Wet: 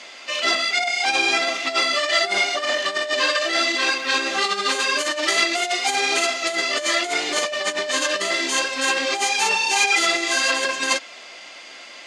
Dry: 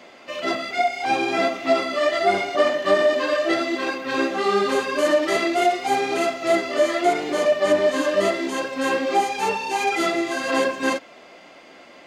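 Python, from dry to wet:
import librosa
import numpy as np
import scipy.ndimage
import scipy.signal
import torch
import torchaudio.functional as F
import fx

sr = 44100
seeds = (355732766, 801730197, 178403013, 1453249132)

y = fx.low_shelf(x, sr, hz=230.0, db=8.5)
y = fx.over_compress(y, sr, threshold_db=-21.0, ratio=-1.0)
y = fx.weighting(y, sr, curve='ITU-R 468')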